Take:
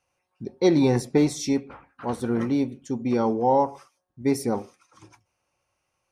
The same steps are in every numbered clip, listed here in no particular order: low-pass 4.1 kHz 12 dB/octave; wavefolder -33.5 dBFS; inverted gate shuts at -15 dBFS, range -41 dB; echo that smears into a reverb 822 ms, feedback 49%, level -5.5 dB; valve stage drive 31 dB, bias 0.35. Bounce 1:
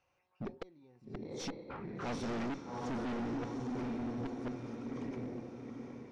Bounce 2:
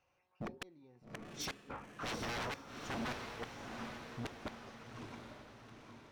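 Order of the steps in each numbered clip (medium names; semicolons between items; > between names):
inverted gate > echo that smears into a reverb > valve stage > wavefolder > low-pass; low-pass > inverted gate > wavefolder > echo that smears into a reverb > valve stage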